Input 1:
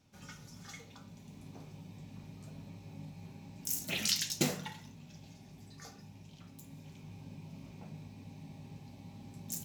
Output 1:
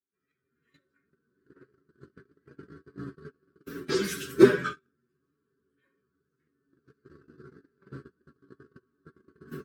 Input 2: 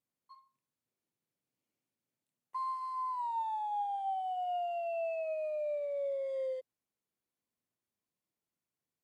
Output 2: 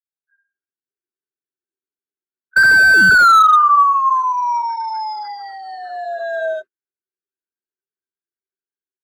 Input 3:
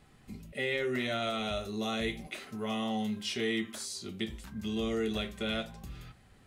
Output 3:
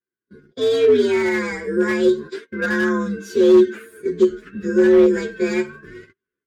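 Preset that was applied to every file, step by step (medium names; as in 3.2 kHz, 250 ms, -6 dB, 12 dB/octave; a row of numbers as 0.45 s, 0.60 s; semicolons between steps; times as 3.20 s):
frequency axis rescaled in octaves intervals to 128%; gate -48 dBFS, range -34 dB; level rider gain up to 10.5 dB; two resonant band-passes 770 Hz, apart 2 oct; slew-rate limiter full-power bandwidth 18 Hz; peak normalisation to -3 dBFS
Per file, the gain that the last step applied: +20.5 dB, +30.0 dB, +19.5 dB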